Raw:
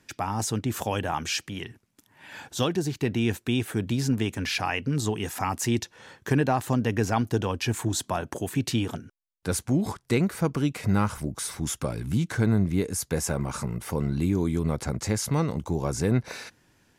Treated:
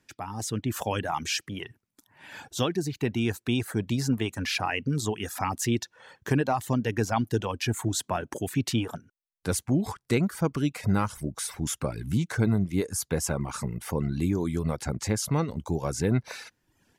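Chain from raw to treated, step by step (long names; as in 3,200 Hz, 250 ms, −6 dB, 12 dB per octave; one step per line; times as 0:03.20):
reverb reduction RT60 0.68 s
automatic gain control gain up to 7.5 dB
level −7.5 dB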